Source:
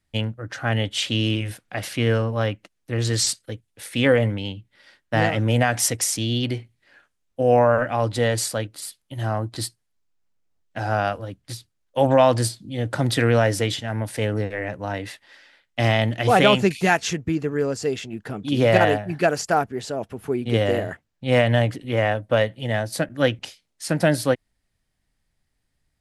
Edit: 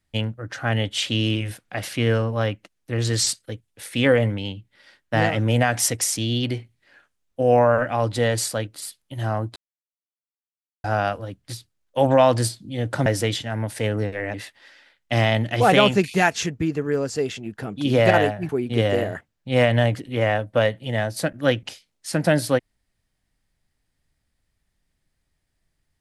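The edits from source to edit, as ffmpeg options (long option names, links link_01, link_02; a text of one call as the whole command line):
ffmpeg -i in.wav -filter_complex "[0:a]asplit=6[link_01][link_02][link_03][link_04][link_05][link_06];[link_01]atrim=end=9.56,asetpts=PTS-STARTPTS,afade=type=out:start_time=9.556:duration=0.004:curve=hsin[link_07];[link_02]atrim=start=9.56:end=10.84,asetpts=PTS-STARTPTS,volume=0[link_08];[link_03]atrim=start=10.84:end=13.062,asetpts=PTS-STARTPTS,afade=type=in:duration=0.004:curve=hsin[link_09];[link_04]atrim=start=13.438:end=14.722[link_10];[link_05]atrim=start=15.008:end=19.162[link_11];[link_06]atrim=start=20.248[link_12];[link_07][link_08][link_09]concat=n=3:v=0:a=1[link_13];[link_13][link_10]acrossfade=duration=0.004:curve1=hsin:curve2=hsin[link_14];[link_14][link_11]acrossfade=duration=0.004:curve1=hsin:curve2=hsin[link_15];[link_15][link_12]acrossfade=duration=0.004:curve1=hsin:curve2=hsin" out.wav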